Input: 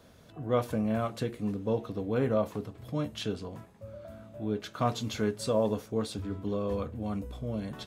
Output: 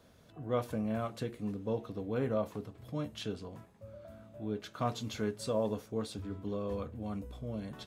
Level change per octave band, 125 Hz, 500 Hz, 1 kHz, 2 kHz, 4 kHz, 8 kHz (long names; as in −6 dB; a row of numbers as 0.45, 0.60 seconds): −5.0, −5.0, −5.0, −5.0, −5.0, −5.0 decibels